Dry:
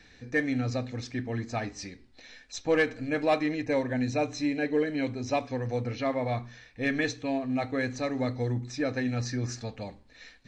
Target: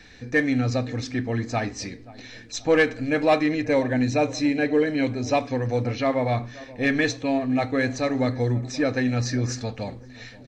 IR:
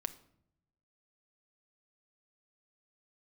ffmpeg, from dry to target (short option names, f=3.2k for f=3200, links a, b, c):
-filter_complex "[0:a]asplit=2[a][b];[b]adelay=529,lowpass=f=1.1k:p=1,volume=-19dB,asplit=2[c][d];[d]adelay=529,lowpass=f=1.1k:p=1,volume=0.54,asplit=2[e][f];[f]adelay=529,lowpass=f=1.1k:p=1,volume=0.54,asplit=2[g][h];[h]adelay=529,lowpass=f=1.1k:p=1,volume=0.54[i];[a][c][e][g][i]amix=inputs=5:normalize=0,asplit=2[j][k];[k]asoftclip=type=tanh:threshold=-25dB,volume=-10.5dB[l];[j][l]amix=inputs=2:normalize=0,volume=4.5dB"